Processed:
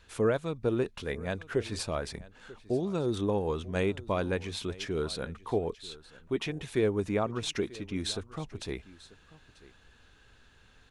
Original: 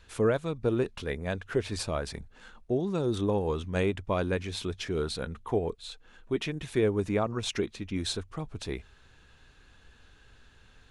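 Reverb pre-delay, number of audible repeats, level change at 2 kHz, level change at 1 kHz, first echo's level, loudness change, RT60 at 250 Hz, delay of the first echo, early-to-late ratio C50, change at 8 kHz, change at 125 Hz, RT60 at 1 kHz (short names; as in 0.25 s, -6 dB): none, 1, -1.0 dB, -1.0 dB, -20.0 dB, -1.5 dB, none, 0.94 s, none, -1.0 dB, -2.5 dB, none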